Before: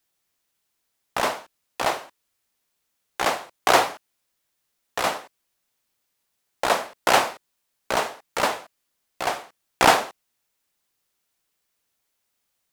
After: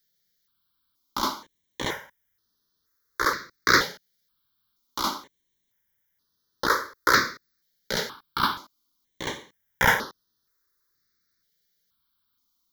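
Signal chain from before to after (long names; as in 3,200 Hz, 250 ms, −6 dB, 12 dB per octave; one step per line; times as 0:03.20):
phaser with its sweep stopped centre 2,600 Hz, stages 6
step-sequenced phaser 2.1 Hz 300–7,700 Hz
level +5.5 dB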